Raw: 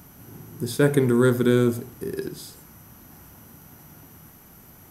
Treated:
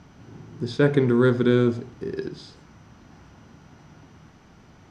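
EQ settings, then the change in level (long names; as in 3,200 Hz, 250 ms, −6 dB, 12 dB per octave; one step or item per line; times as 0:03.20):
low-pass filter 5,200 Hz 24 dB per octave
0.0 dB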